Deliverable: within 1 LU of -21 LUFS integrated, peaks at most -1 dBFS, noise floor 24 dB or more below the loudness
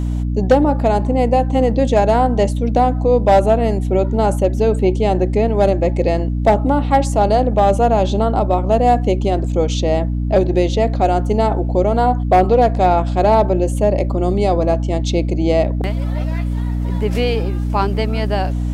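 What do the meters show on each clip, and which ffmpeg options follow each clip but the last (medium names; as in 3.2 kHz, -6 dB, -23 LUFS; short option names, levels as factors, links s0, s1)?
hum 60 Hz; highest harmonic 300 Hz; hum level -17 dBFS; loudness -16.5 LUFS; peak level -2.5 dBFS; loudness target -21.0 LUFS
-> -af "bandreject=f=60:t=h:w=6,bandreject=f=120:t=h:w=6,bandreject=f=180:t=h:w=6,bandreject=f=240:t=h:w=6,bandreject=f=300:t=h:w=6"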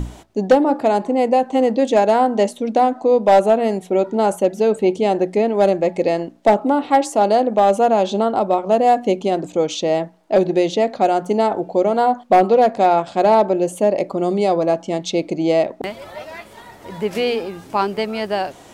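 hum not found; loudness -17.5 LUFS; peak level -4.5 dBFS; loudness target -21.0 LUFS
-> -af "volume=0.668"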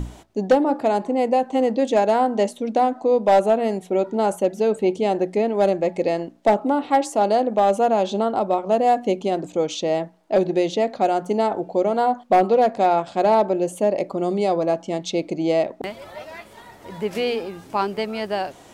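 loudness -21.0 LUFS; peak level -8.0 dBFS; noise floor -47 dBFS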